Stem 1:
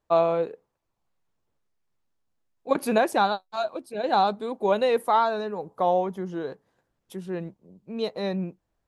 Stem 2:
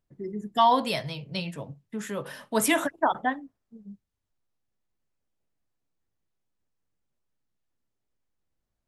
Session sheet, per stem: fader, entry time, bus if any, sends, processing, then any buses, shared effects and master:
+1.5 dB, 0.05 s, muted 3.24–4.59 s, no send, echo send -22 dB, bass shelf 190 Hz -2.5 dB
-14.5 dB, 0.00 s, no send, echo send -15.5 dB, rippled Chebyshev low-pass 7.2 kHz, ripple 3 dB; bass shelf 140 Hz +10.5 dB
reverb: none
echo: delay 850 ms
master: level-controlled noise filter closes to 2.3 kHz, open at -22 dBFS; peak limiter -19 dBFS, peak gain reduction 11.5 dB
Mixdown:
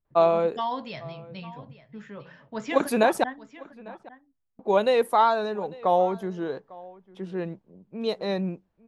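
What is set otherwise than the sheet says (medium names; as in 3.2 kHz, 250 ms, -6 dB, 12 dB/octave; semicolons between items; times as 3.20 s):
stem 2 -14.5 dB -> -7.5 dB; master: missing peak limiter -19 dBFS, peak gain reduction 11.5 dB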